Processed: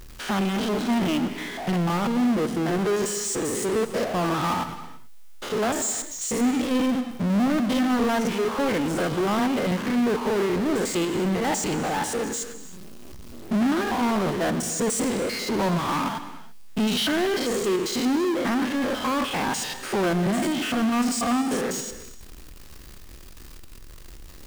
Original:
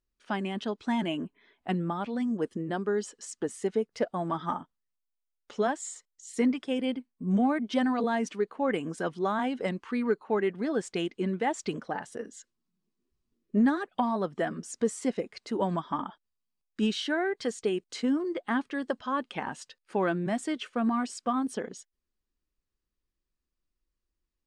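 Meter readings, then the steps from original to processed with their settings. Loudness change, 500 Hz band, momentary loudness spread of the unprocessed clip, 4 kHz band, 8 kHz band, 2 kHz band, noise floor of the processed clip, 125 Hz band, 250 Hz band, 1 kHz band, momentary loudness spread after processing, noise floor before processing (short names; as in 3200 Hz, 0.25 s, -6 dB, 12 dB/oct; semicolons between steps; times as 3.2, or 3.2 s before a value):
+6.0 dB, +5.0 dB, 9 LU, +10.5 dB, +14.0 dB, +6.5 dB, -42 dBFS, +8.0 dB, +6.5 dB, +5.5 dB, 6 LU, -84 dBFS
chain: stepped spectrum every 0.1 s; power-law curve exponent 0.35; non-linear reverb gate 0.36 s flat, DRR 11 dB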